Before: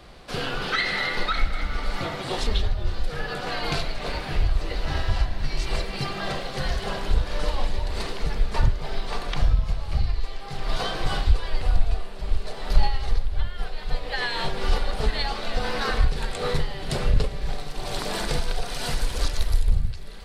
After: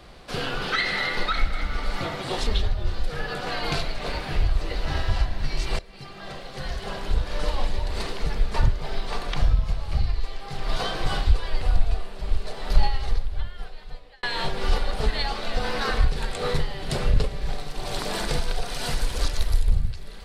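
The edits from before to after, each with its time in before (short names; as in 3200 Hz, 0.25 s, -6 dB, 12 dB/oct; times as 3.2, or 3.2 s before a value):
5.79–7.53 fade in, from -19 dB
13.01–14.23 fade out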